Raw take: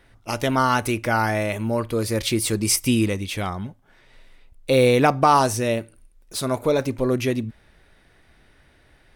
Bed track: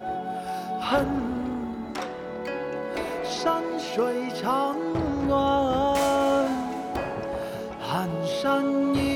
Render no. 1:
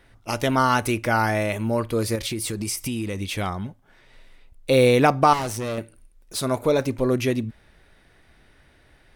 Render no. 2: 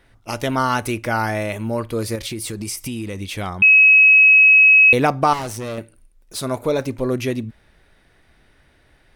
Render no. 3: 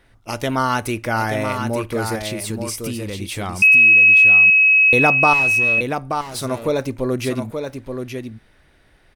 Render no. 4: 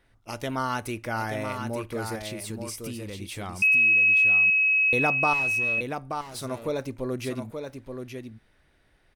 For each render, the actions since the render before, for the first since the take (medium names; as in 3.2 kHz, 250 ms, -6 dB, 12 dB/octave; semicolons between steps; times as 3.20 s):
2.15–3.19 s: compression, threshold -24 dBFS; 5.33–5.78 s: valve stage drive 24 dB, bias 0.8
3.62–4.93 s: bleep 2.56 kHz -7 dBFS
delay 878 ms -6.5 dB
trim -9 dB